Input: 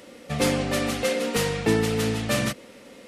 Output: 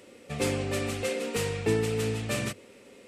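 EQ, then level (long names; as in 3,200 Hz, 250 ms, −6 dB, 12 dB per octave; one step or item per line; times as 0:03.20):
thirty-one-band graphic EQ 100 Hz +10 dB, 400 Hz +9 dB, 2,500 Hz +5 dB, 8,000 Hz +6 dB
−8.0 dB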